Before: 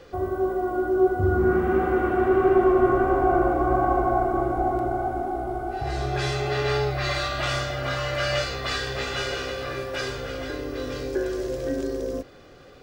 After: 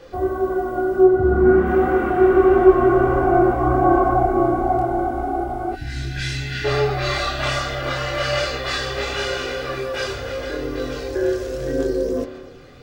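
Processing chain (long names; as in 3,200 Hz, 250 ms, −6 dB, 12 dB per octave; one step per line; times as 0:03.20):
0:01.02–0:01.65: high-shelf EQ 3,600 Hz → 7,000 Hz −12 dB
spring reverb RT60 1.6 s, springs 32 ms, chirp 55 ms, DRR 10 dB
multi-voice chorus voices 4, 0.92 Hz, delay 26 ms, depth 3 ms
0:05.75–0:06.65: gain on a spectral selection 330–1,400 Hz −20 dB
level +6.5 dB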